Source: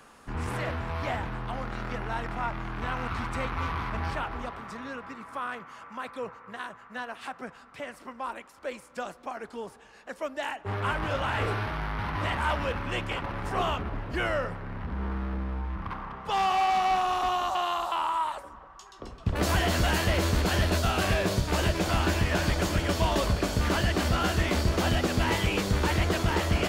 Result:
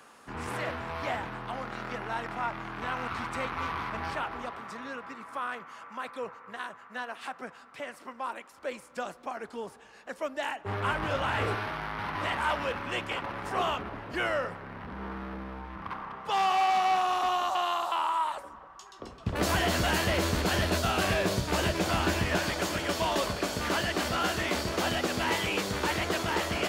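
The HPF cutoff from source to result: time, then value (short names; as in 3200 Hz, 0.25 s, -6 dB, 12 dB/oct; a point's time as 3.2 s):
HPF 6 dB/oct
260 Hz
from 8.52 s 99 Hz
from 11.55 s 280 Hz
from 18.3 s 130 Hz
from 22.39 s 340 Hz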